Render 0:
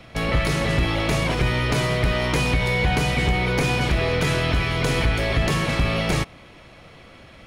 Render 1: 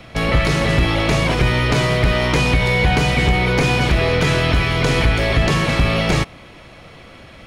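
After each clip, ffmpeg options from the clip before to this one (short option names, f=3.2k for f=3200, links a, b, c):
-filter_complex "[0:a]acrossover=split=7900[a][b];[b]acompressor=threshold=-47dB:ratio=4:attack=1:release=60[c];[a][c]amix=inputs=2:normalize=0,volume=5dB"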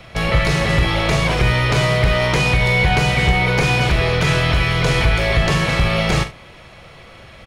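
-filter_complex "[0:a]equalizer=f=270:t=o:w=0.59:g=-8.5,asplit=2[a][b];[b]aecho=0:1:42|74:0.316|0.15[c];[a][c]amix=inputs=2:normalize=0"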